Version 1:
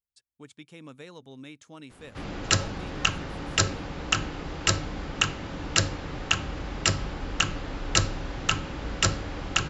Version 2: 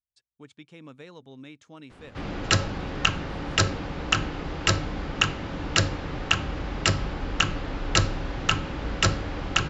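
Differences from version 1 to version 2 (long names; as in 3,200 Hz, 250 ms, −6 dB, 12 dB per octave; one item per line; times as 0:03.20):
background +3.0 dB
master: add high-frequency loss of the air 76 metres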